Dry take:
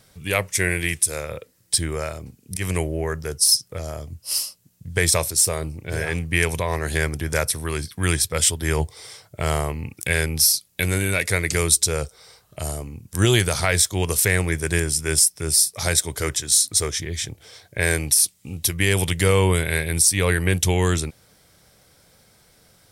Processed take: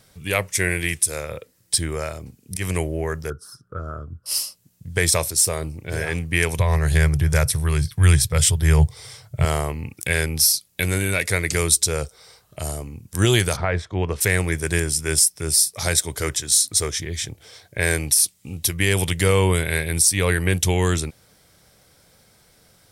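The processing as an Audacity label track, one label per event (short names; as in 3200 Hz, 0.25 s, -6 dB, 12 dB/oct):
3.300000	4.260000	EQ curve 420 Hz 0 dB, 840 Hz -11 dB, 1400 Hz +12 dB, 2100 Hz -25 dB, 3200 Hz -21 dB, 4900 Hz -27 dB
6.580000	9.450000	resonant low shelf 170 Hz +7.5 dB, Q 3
13.550000	14.200000	LPF 1400 Hz -> 2300 Hz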